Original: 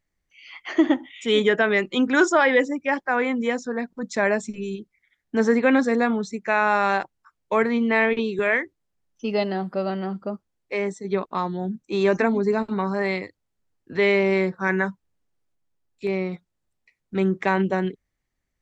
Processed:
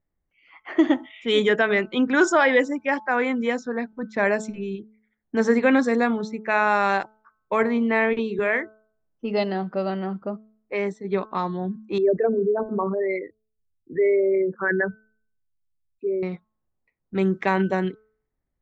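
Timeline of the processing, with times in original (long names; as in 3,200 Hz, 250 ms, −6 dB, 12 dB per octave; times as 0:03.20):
0:01.74–0:02.21: high-frequency loss of the air 120 metres
0:07.61–0:09.37: parametric band 4,800 Hz −6 dB 2 octaves
0:11.98–0:16.23: spectral envelope exaggerated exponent 3
whole clip: low-pass that shuts in the quiet parts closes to 1,100 Hz, open at −17 dBFS; hum removal 216.9 Hz, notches 7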